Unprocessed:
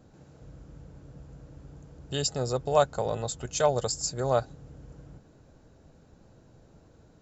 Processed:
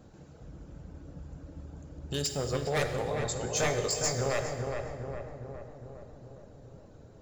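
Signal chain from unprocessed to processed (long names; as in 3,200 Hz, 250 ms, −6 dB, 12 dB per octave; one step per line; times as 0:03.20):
reverb reduction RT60 1.2 s
in parallel at −0.5 dB: downward compressor 6 to 1, threshold −39 dBFS, peak gain reduction 20.5 dB
on the sum: wave folding −20.5 dBFS
0:03.45–0:04.17: double-tracking delay 19 ms −3.5 dB
on a send: feedback echo with a low-pass in the loop 410 ms, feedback 64%, low-pass 1,600 Hz, level −4 dB
on the sum: dense smooth reverb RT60 1.8 s, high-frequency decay 0.9×, DRR 6 dB
level −3.5 dB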